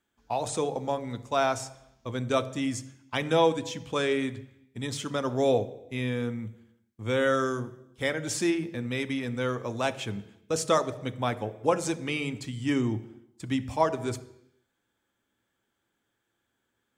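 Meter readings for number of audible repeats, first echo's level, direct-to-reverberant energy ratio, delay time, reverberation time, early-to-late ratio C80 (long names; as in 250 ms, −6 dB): no echo audible, no echo audible, 10.5 dB, no echo audible, 0.85 s, 17.5 dB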